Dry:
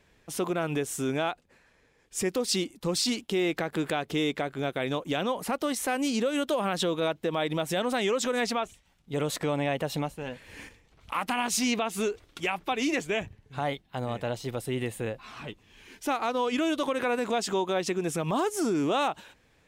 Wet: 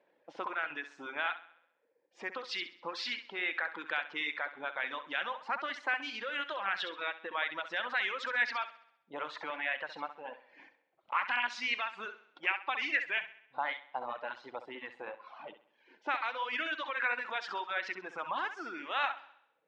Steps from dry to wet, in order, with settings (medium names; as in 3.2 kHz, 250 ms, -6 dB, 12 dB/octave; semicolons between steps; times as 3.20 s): cabinet simulation 330–4900 Hz, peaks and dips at 420 Hz -10 dB, 680 Hz -6 dB, 1.2 kHz -5 dB; auto-wah 550–1700 Hz, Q 2.1, up, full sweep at -29 dBFS; on a send: flutter echo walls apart 11.3 m, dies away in 0.72 s; on the sum: reverb removal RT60 1.1 s; trim +6 dB